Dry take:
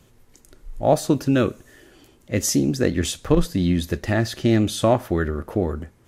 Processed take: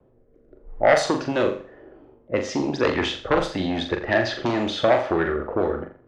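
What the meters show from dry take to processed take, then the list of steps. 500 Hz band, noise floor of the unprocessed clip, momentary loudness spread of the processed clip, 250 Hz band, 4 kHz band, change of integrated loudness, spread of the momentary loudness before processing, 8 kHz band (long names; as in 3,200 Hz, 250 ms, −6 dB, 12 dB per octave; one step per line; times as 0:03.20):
+1.5 dB, −55 dBFS, 7 LU, −5.0 dB, +1.5 dB, −1.0 dB, 6 LU, −11.0 dB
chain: low-pass that shuts in the quiet parts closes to 470 Hz, open at −13 dBFS
high-shelf EQ 4,600 Hz −6.5 dB
rotating-speaker cabinet horn 0.9 Hz, later 6 Hz, at 0:02.83
pitch vibrato 0.89 Hz 5.6 cents
sine wavefolder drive 8 dB, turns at −5.5 dBFS
downward compressor, threshold −11 dBFS, peak gain reduction 4 dB
three-way crossover with the lows and the highs turned down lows −17 dB, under 410 Hz, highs −22 dB, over 7,100 Hz
flutter between parallel walls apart 7.2 metres, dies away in 0.4 s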